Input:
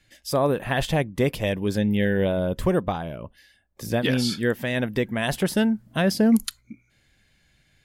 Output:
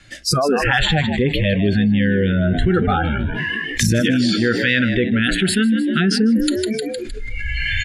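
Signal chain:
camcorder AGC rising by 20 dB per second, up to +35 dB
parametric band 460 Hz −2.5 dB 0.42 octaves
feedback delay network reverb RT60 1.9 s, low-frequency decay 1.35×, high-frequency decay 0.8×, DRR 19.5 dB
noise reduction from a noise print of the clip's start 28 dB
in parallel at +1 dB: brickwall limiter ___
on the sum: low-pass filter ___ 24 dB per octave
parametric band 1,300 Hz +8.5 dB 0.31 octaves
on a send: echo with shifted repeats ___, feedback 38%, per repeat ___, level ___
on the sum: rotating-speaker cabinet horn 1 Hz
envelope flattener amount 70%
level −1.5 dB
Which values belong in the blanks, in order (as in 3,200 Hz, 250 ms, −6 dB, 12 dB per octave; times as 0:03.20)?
−19.5 dBFS, 10,000 Hz, 154 ms, +70 Hz, −13 dB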